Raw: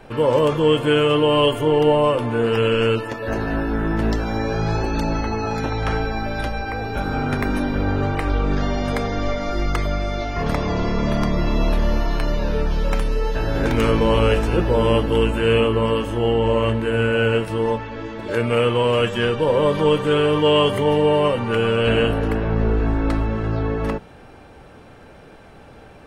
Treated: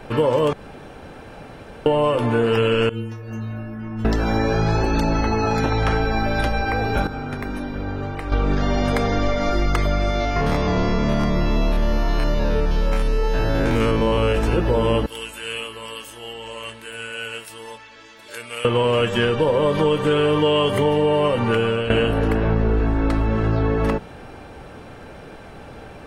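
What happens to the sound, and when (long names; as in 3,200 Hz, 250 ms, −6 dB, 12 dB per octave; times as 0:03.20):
0:00.53–0:01.86: fill with room tone
0:02.89–0:04.05: stiff-string resonator 110 Hz, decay 0.84 s, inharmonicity 0.008
0:07.07–0:08.32: clip gain −11.5 dB
0:10.10–0:14.35: spectrum averaged block by block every 50 ms
0:15.06–0:18.65: first-order pre-emphasis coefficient 0.97
0:21.49–0:21.90: fade out, to −15 dB
whole clip: downward compressor, threshold −20 dBFS; level +5 dB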